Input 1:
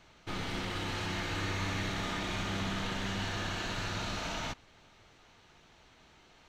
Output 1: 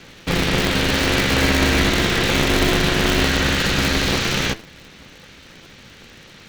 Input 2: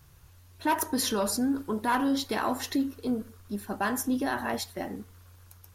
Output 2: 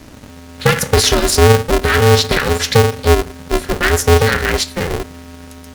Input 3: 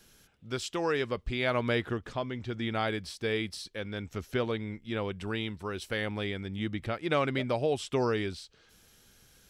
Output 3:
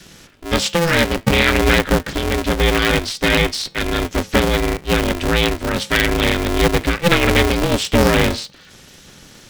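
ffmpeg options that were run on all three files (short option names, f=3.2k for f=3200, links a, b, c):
-af "lowpass=7.8k,acontrast=88,flanger=delay=8.3:depth=1.4:regen=-83:speed=0.58:shape=triangular,asuperstop=centerf=750:order=12:qfactor=0.74,alimiter=level_in=16.5dB:limit=-1dB:release=50:level=0:latency=1,aeval=exprs='val(0)*sgn(sin(2*PI*170*n/s))':c=same,volume=-1dB"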